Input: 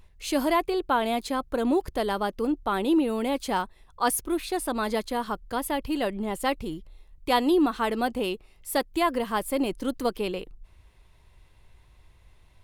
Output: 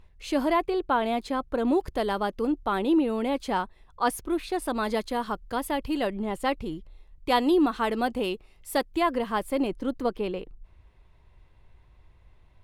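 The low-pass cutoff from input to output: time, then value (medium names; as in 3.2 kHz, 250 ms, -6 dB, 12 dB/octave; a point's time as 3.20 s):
low-pass 6 dB/octave
2.9 kHz
from 1.68 s 5.7 kHz
from 2.79 s 3.4 kHz
from 4.62 s 6.9 kHz
from 6.07 s 3.8 kHz
from 7.29 s 6.9 kHz
from 8.95 s 3.7 kHz
from 9.67 s 1.8 kHz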